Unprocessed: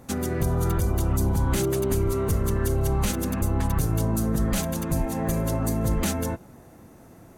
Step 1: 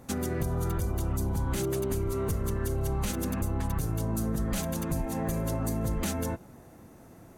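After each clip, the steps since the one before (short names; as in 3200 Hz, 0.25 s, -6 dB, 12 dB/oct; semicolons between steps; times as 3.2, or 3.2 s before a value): compressor 3:1, threshold -24 dBFS, peak gain reduction 5 dB; gain -2.5 dB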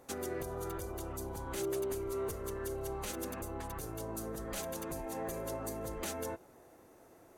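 resonant low shelf 280 Hz -9.5 dB, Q 1.5; gain -5.5 dB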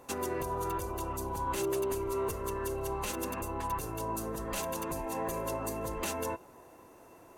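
small resonant body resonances 1000/2700 Hz, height 14 dB, ringing for 55 ms; gain +3.5 dB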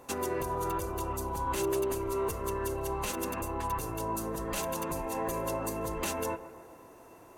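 analogue delay 0.139 s, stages 2048, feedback 61%, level -15 dB; gain +1.5 dB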